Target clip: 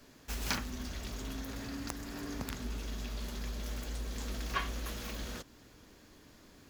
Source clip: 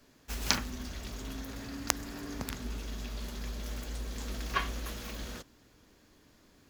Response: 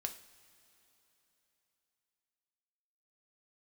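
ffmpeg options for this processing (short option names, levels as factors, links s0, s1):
-filter_complex "[0:a]asplit=2[s0][s1];[s1]acompressor=threshold=0.00447:ratio=6,volume=1.26[s2];[s0][s2]amix=inputs=2:normalize=0,asoftclip=type=tanh:threshold=0.112,volume=0.708"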